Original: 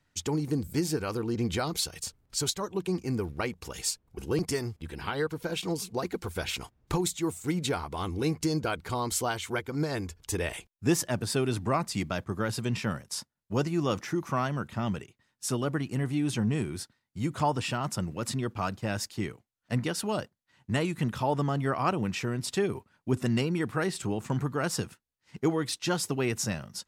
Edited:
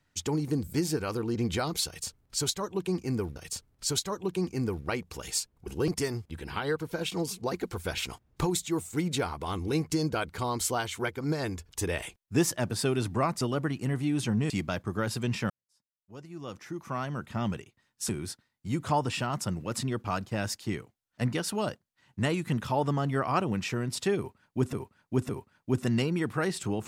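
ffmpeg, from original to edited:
ffmpeg -i in.wav -filter_complex "[0:a]asplit=8[link_01][link_02][link_03][link_04][link_05][link_06][link_07][link_08];[link_01]atrim=end=3.362[link_09];[link_02]atrim=start=1.868:end=11.922[link_10];[link_03]atrim=start=15.508:end=16.602[link_11];[link_04]atrim=start=11.918:end=12.92,asetpts=PTS-STARTPTS,afade=type=out:start_time=0.998:duration=0.004:curve=hsin[link_12];[link_05]atrim=start=12.92:end=15.512,asetpts=PTS-STARTPTS,afade=type=in:duration=1.93:curve=qua[link_13];[link_06]atrim=start=16.598:end=23.242[link_14];[link_07]atrim=start=22.678:end=23.242[link_15];[link_08]atrim=start=22.678[link_16];[link_09][link_10]acrossfade=duration=0.004:curve1=hsin:curve2=hsin[link_17];[link_17][link_11]acrossfade=duration=0.004:curve1=hsin:curve2=hsin[link_18];[link_12][link_13]concat=n=2:v=0:a=1[link_19];[link_18][link_19]acrossfade=duration=0.004:curve1=hsin:curve2=hsin[link_20];[link_20][link_14]acrossfade=duration=0.004:curve1=hsin:curve2=hsin[link_21];[link_21][link_15]acrossfade=duration=0.004:curve1=hsin:curve2=hsin[link_22];[link_22][link_16]acrossfade=duration=0.004:curve1=hsin:curve2=hsin" out.wav

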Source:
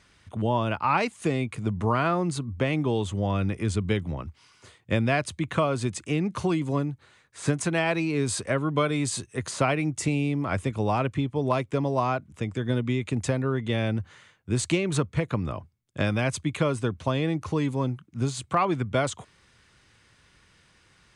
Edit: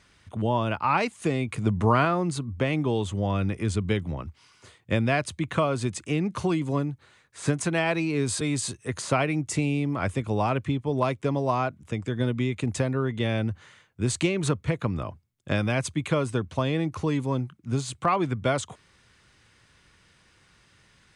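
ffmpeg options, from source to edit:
ffmpeg -i in.wav -filter_complex "[0:a]asplit=4[link_01][link_02][link_03][link_04];[link_01]atrim=end=1.482[link_05];[link_02]atrim=start=1.478:end=2.052,asetpts=PTS-STARTPTS,volume=3.5dB[link_06];[link_03]atrim=start=2.048:end=8.412[link_07];[link_04]atrim=start=8.898[link_08];[link_05][link_06]acrossfade=duration=0.004:curve1=hsin:curve2=hsin[link_09];[link_09][link_07]acrossfade=duration=0.004:curve1=hsin:curve2=hsin[link_10];[link_10][link_08]acrossfade=duration=0.004:curve1=hsin:curve2=hsin" out.wav

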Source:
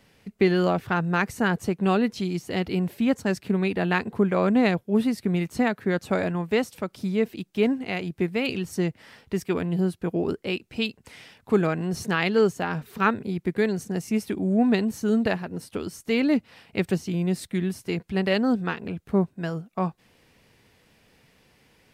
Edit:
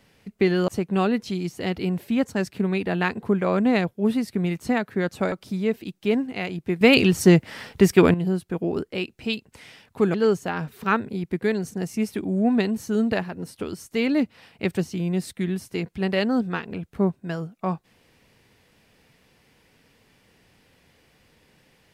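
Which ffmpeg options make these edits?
ffmpeg -i in.wav -filter_complex "[0:a]asplit=6[link_01][link_02][link_03][link_04][link_05][link_06];[link_01]atrim=end=0.682[link_07];[link_02]atrim=start=1.578:end=6.222[link_08];[link_03]atrim=start=6.838:end=8.332[link_09];[link_04]atrim=start=8.328:end=9.662,asetpts=PTS-STARTPTS,volume=11dB[link_10];[link_05]atrim=start=9.658:end=11.662[link_11];[link_06]atrim=start=12.278[link_12];[link_07][link_08]acrossfade=duration=0.004:curve1=hsin:curve2=hsin[link_13];[link_13][link_09]acrossfade=duration=0.004:curve1=hsin:curve2=hsin[link_14];[link_14][link_10]acrossfade=duration=0.004:curve1=hsin:curve2=hsin[link_15];[link_15][link_11]acrossfade=duration=0.004:curve1=hsin:curve2=hsin[link_16];[link_16][link_12]acrossfade=duration=0.004:curve1=hsin:curve2=hsin" out.wav

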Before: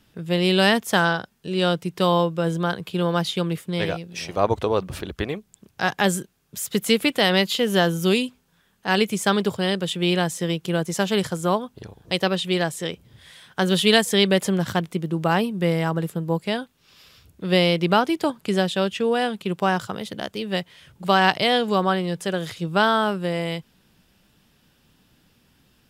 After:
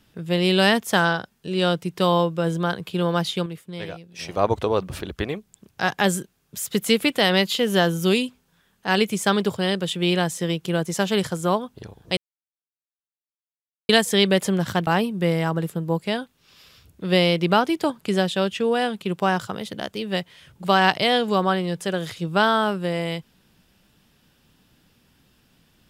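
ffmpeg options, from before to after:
ffmpeg -i in.wav -filter_complex "[0:a]asplit=6[link_01][link_02][link_03][link_04][link_05][link_06];[link_01]atrim=end=3.46,asetpts=PTS-STARTPTS,afade=type=out:start_time=3.11:duration=0.35:curve=log:silence=0.375837[link_07];[link_02]atrim=start=3.46:end=4.19,asetpts=PTS-STARTPTS,volume=-8.5dB[link_08];[link_03]atrim=start=4.19:end=12.17,asetpts=PTS-STARTPTS,afade=type=in:duration=0.35:curve=log:silence=0.375837,afade=type=out:start_time=7.976:duration=0.004:curve=hsin[link_09];[link_04]atrim=start=12.17:end=13.89,asetpts=PTS-STARTPTS,volume=0[link_10];[link_05]atrim=start=13.89:end=14.872,asetpts=PTS-STARTPTS,afade=type=in:duration=0.004:curve=hsin[link_11];[link_06]atrim=start=15.268[link_12];[link_07][link_08][link_09][link_10][link_11]concat=n=5:v=0:a=1[link_13];[link_13][link_12]acrossfade=duration=0.004:curve1=hsin:curve2=hsin" out.wav

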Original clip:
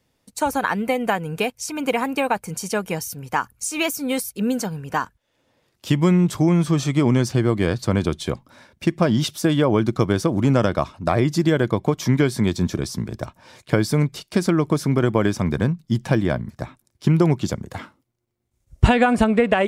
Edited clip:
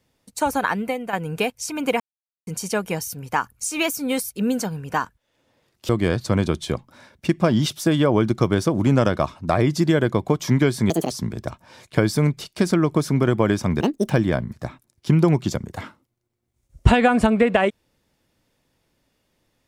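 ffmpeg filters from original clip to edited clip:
ffmpeg -i in.wav -filter_complex "[0:a]asplit=9[link_01][link_02][link_03][link_04][link_05][link_06][link_07][link_08][link_09];[link_01]atrim=end=1.13,asetpts=PTS-STARTPTS,afade=type=out:start_time=0.68:duration=0.45:silence=0.298538[link_10];[link_02]atrim=start=1.13:end=2,asetpts=PTS-STARTPTS,afade=type=in:duration=0.004:curve=hsin:silence=0.298538,afade=type=out:start_time=0.866:duration=0.004:curve=hsin[link_11];[link_03]atrim=start=2:end=2.47,asetpts=PTS-STARTPTS,volume=0[link_12];[link_04]atrim=start=2.47:end=5.892,asetpts=PTS-STARTPTS,afade=type=in:duration=0.004:curve=hsin[link_13];[link_05]atrim=start=7.468:end=12.484[link_14];[link_06]atrim=start=12.48:end=12.86,asetpts=PTS-STARTPTS,asetrate=81585,aresample=44100,atrim=end_sample=9058,asetpts=PTS-STARTPTS[link_15];[link_07]atrim=start=12.856:end=15.564[link_16];[link_08]atrim=start=15.56:end=16.07,asetpts=PTS-STARTPTS,asetrate=77175,aresample=44100[link_17];[link_09]atrim=start=16.066[link_18];[link_10][link_11][link_12][link_13]concat=n=4:v=0:a=1[link_19];[link_19][link_14]acrossfade=duration=0.004:curve1=hsin:curve2=hsin[link_20];[link_20][link_15]acrossfade=duration=0.004:curve1=hsin:curve2=hsin[link_21];[link_21][link_16]acrossfade=duration=0.004:curve1=hsin:curve2=hsin[link_22];[link_22][link_17]acrossfade=duration=0.004:curve1=hsin:curve2=hsin[link_23];[link_23][link_18]acrossfade=duration=0.004:curve1=hsin:curve2=hsin" out.wav

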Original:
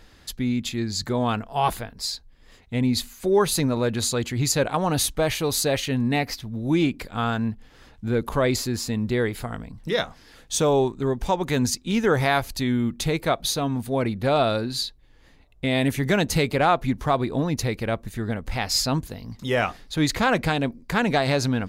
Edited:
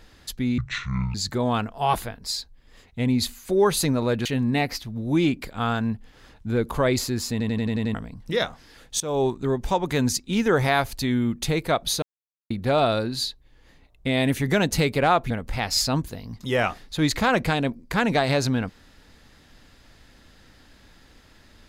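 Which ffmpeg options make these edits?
ffmpeg -i in.wav -filter_complex "[0:a]asplit=15[link_01][link_02][link_03][link_04][link_05][link_06][link_07][link_08][link_09][link_10][link_11][link_12][link_13][link_14][link_15];[link_01]atrim=end=0.584[link_16];[link_02]atrim=start=0.58:end=0.89,asetpts=PTS-STARTPTS,asetrate=24255,aresample=44100,atrim=end_sample=24856,asetpts=PTS-STARTPTS[link_17];[link_03]atrim=start=0.886:end=4.002[link_18];[link_04]atrim=start=5.828:end=8.982[link_19];[link_05]atrim=start=8.888:end=8.982[link_20];[link_06]atrim=start=8.888:end=8.982[link_21];[link_07]atrim=start=8.888:end=8.982[link_22];[link_08]atrim=start=8.888:end=8.982[link_23];[link_09]atrim=start=8.888:end=8.982[link_24];[link_10]atrim=start=8.888:end=8.982[link_25];[link_11]atrim=start=9.518:end=10.58,asetpts=PTS-STARTPTS,afade=type=out:start_time=1.058:duration=0.004:curve=hsin:silence=0.112202[link_26];[link_12]atrim=start=10.58:end=13.6,asetpts=PTS-STARTPTS,afade=type=in:duration=0.28:silence=0.112202,afade=type=out:start_time=3.016:duration=0.004:curve=hsin[link_27];[link_13]atrim=start=13.6:end=14.08,asetpts=PTS-STARTPTS,volume=0[link_28];[link_14]atrim=start=14.08:end=16.882,asetpts=PTS-STARTPTS,afade=type=in:duration=0.004:curve=hsin[link_29];[link_15]atrim=start=18.288[link_30];[link_16][link_17]acrossfade=duration=0.004:curve1=hsin:curve2=hsin[link_31];[link_31][link_18]acrossfade=duration=0.004:curve1=hsin:curve2=hsin[link_32];[link_32][link_19]acrossfade=duration=0.004:curve1=hsin:curve2=hsin[link_33];[link_33][link_20]acrossfade=duration=0.004:curve1=hsin:curve2=hsin[link_34];[link_34][link_21]acrossfade=duration=0.004:curve1=hsin:curve2=hsin[link_35];[link_35][link_22]acrossfade=duration=0.004:curve1=hsin:curve2=hsin[link_36];[link_36][link_23]acrossfade=duration=0.004:curve1=hsin:curve2=hsin[link_37];[link_37][link_24]acrossfade=duration=0.004:curve1=hsin:curve2=hsin[link_38];[link_38][link_25]acrossfade=duration=0.004:curve1=hsin:curve2=hsin[link_39];[link_26][link_27][link_28][link_29]concat=n=4:v=0:a=1[link_40];[link_39][link_40]acrossfade=duration=0.004:curve1=hsin:curve2=hsin[link_41];[link_41][link_30]acrossfade=duration=0.004:curve1=hsin:curve2=hsin" out.wav

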